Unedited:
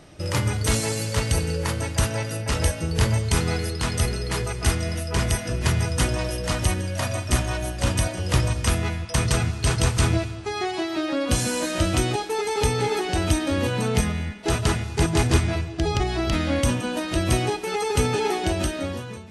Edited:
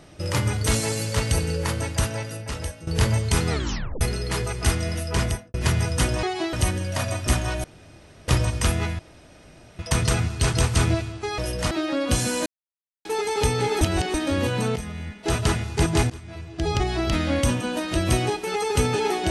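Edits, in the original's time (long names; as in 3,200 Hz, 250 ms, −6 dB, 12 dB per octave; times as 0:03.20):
0:01.81–0:02.87: fade out linear, to −14.5 dB
0:03.50: tape stop 0.51 s
0:05.21–0:05.54: fade out and dull
0:06.23–0:06.56: swap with 0:10.61–0:10.91
0:07.67–0:08.31: fill with room tone
0:09.02: splice in room tone 0.80 s
0:11.66–0:12.25: silence
0:13.01–0:13.34: reverse
0:13.96–0:14.57: fade in, from −13.5 dB
0:15.30–0:15.90: fade in quadratic, from −21.5 dB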